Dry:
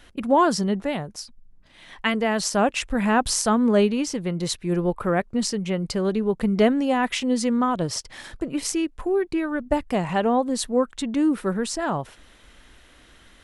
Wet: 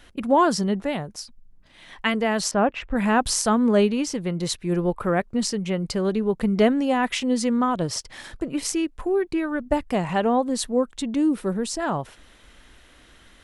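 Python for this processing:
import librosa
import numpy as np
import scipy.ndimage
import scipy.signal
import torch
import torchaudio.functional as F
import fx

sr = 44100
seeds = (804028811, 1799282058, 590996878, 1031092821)

y = fx.lowpass(x, sr, hz=2100.0, slope=12, at=(2.51, 2.96))
y = fx.dynamic_eq(y, sr, hz=1500.0, q=1.1, threshold_db=-42.0, ratio=4.0, max_db=-7, at=(10.66, 11.8))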